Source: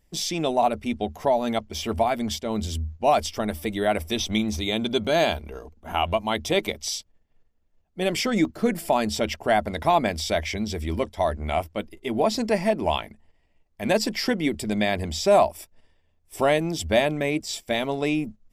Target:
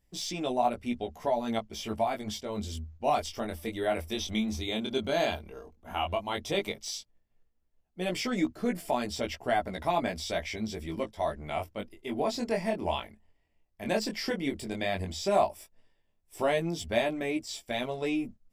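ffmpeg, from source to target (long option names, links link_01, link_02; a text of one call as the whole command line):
ffmpeg -i in.wav -filter_complex "[0:a]flanger=delay=16:depth=6.6:speed=0.11,acrossover=split=7000[link_01][link_02];[link_02]asoftclip=type=tanh:threshold=-38.5dB[link_03];[link_01][link_03]amix=inputs=2:normalize=0,volume=-4dB" out.wav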